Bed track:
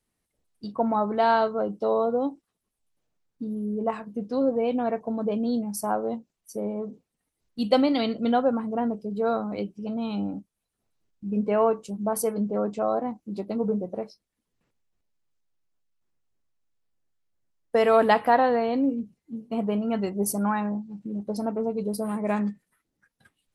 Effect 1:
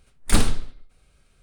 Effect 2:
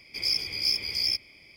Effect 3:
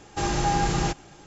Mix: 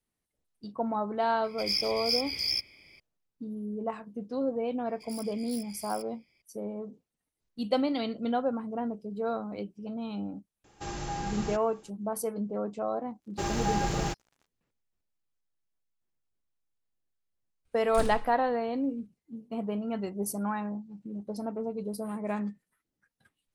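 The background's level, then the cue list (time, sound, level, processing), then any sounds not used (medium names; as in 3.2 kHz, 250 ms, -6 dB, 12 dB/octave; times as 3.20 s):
bed track -6.5 dB
1.44 s: add 2 -3 dB
4.86 s: add 2 -17 dB + self-modulated delay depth 0.086 ms
10.64 s: add 3 -11.5 dB
13.21 s: add 3 -5 dB + crossover distortion -42 dBFS
17.65 s: add 1 -16.5 dB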